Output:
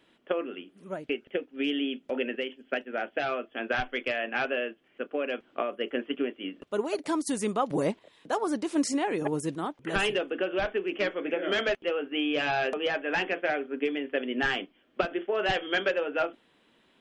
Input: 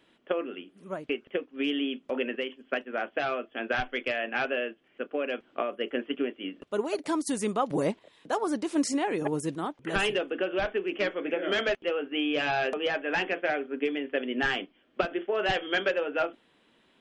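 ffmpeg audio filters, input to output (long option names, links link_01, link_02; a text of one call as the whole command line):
ffmpeg -i in.wav -filter_complex "[0:a]asettb=1/sr,asplit=3[link_01][link_02][link_03];[link_01]atrim=end=0.894[link_04];[link_02]atrim=start=0.89:end=3.29,asetpts=PTS-STARTPTS,afade=type=in:duration=0.004:curve=qsin,afade=type=out:start_time=2.396:duration=0.004:curve=qsin,equalizer=frequency=1100:width_type=o:width=0.21:gain=-11[link_05];[link_03]atrim=start=3.286[link_06];[link_04][link_05]acrossfade=duration=0.004:curve1=hsin:curve2=qsin[link_07];[link_07][link_06]acrossfade=duration=0.004:curve1=qsin:curve2=hsin" out.wav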